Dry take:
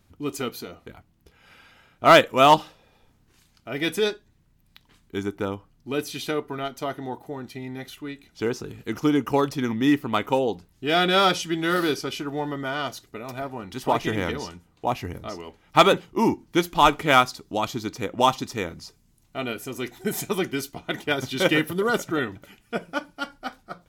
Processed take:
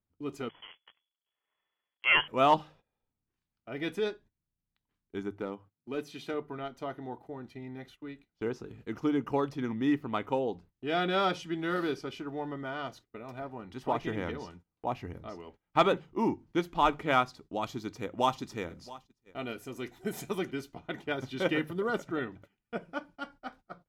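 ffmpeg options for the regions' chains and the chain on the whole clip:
-filter_complex "[0:a]asettb=1/sr,asplit=3[a][b][c];[a]atrim=end=0.494[d];[b]atrim=start=0.49:end=2.28,asetpts=PTS-STARTPTS,afade=t=in:d=0.004:c=qsin,afade=t=out:st=1.786:d=0.004:c=qsin,bandreject=f=50:t=h:w=6,bandreject=f=100:t=h:w=6,bandreject=f=150:t=h:w=6,bandreject=f=200:t=h:w=6,bandreject=f=250:t=h:w=6,bandreject=f=300:t=h:w=6,bandreject=f=350:t=h:w=6,bandreject=f=400:t=h:w=6,bandreject=f=450:t=h:w=6,acrusher=bits=7:dc=4:mix=0:aa=0.000001,lowpass=f=2.9k:t=q:w=0.5098,lowpass=f=2.9k:t=q:w=0.6013,lowpass=f=2.9k:t=q:w=0.9,lowpass=f=2.9k:t=q:w=2.563,afreqshift=-3400[e];[c]atrim=start=2.276[f];[d][e]acrossfade=d=0.004:c1=hsin:c2=qsin[g];[g][f]acrossfade=d=0.004:c1=qsin:c2=hsin,asettb=1/sr,asplit=3[h][i][j];[h]atrim=end=5.354[k];[i]atrim=start=5.35:end=6.34,asetpts=PTS-STARTPTS,afade=t=in:d=0.004:c=qsin,afade=t=out:st=0.986:d=0.004:c=qsin,highpass=140,volume=18dB,asoftclip=hard,volume=-18dB[l];[j]atrim=start=6.336[m];[k][l]acrossfade=d=0.004:c1=hsin:c2=qsin[n];[n][m]acrossfade=d=0.004:c1=qsin:c2=hsin,asettb=1/sr,asplit=3[o][p][q];[o]atrim=end=17.614[r];[p]atrim=start=17.61:end=20.51,asetpts=PTS-STARTPTS,afade=t=in:d=0.004:c=qsin,afade=t=out:st=2.896:d=0.004:c=qsin,highshelf=f=4.8k:g=8,aecho=1:1:675:0.112,atrim=end_sample=127890[s];[q]atrim=start=20.506[t];[r][s]acrossfade=d=0.004:c1=hsin:c2=qsin[u];[u][t]acrossfade=d=0.004:c1=qsin:c2=hsin,lowpass=f=2k:p=1,bandreject=f=50:t=h:w=6,bandreject=f=100:t=h:w=6,bandreject=f=150:t=h:w=6,agate=range=-18dB:threshold=-45dB:ratio=16:detection=peak,volume=-7.5dB"

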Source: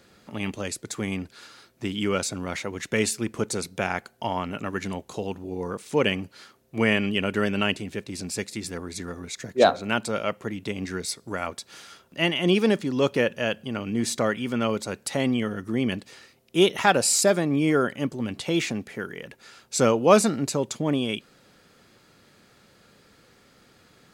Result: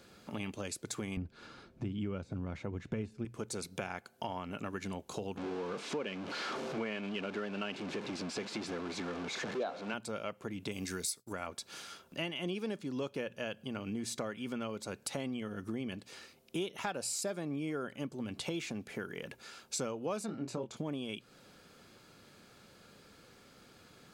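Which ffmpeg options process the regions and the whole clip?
-filter_complex "[0:a]asettb=1/sr,asplit=3[a][b][c];[a]atrim=end=1.174[d];[b]atrim=start=1.17:end=3.25,asetpts=PTS-STARTPTS,afade=t=in:d=0.004:c=qsin,afade=t=out:st=2.076:d=0.004:c=qsin,deesser=0.8,aemphasis=mode=reproduction:type=riaa[e];[c]atrim=start=3.246[f];[d][e]acrossfade=d=0.004:c1=hsin:c2=qsin[g];[g][f]acrossfade=d=0.004:c1=qsin:c2=hsin,asettb=1/sr,asplit=3[h][i][j];[h]atrim=end=5.374[k];[i]atrim=start=5.37:end=9.94,asetpts=PTS-STARTPTS,afade=t=in:d=0.004:c=qsin,afade=t=out:st=4.566:d=0.004:c=qsin,aeval=exprs='val(0)+0.5*0.0562*sgn(val(0))':c=same,highpass=220,lowpass=5.9k,aemphasis=mode=reproduction:type=50kf[l];[j]atrim=start=9.936[m];[k][l]acrossfade=d=0.004:c1=hsin:c2=qsin[n];[n][m]acrossfade=d=0.004:c1=qsin:c2=hsin,asettb=1/sr,asplit=3[o][p][q];[o]atrim=end=10.714[r];[p]atrim=start=10.71:end=11.33,asetpts=PTS-STARTPTS,afade=t=in:d=0.004:c=qsin,afade=t=out:st=0.616:d=0.004:c=qsin,agate=range=-33dB:threshold=-44dB:ratio=3:release=100:detection=peak,aemphasis=mode=production:type=75kf[s];[q]atrim=start=11.326[t];[r][s]acrossfade=d=0.004:c1=hsin:c2=qsin[u];[u][t]acrossfade=d=0.004:c1=qsin:c2=hsin,asettb=1/sr,asplit=3[v][w][x];[v]atrim=end=20.264[y];[w]atrim=start=20.26:end=20.77,asetpts=PTS-STARTPTS,afade=t=in:d=0.004:c=qsin,afade=t=out:st=0.506:d=0.004:c=qsin,lowpass=f=2.3k:p=1,asplit=2[z][aa];[aa]adelay=24,volume=-5.5dB[ab];[z][ab]amix=inputs=2:normalize=0,atrim=end_sample=22491[ac];[x]atrim=start=20.766[ad];[y][ac]acrossfade=d=0.004:c1=hsin:c2=qsin[ae];[ae][ad]acrossfade=d=0.004:c1=qsin:c2=hsin,bandreject=f=1.9k:w=11,acompressor=threshold=-34dB:ratio=5,bandreject=f=60:t=h:w=6,bandreject=f=120:t=h:w=6,volume=-2dB"

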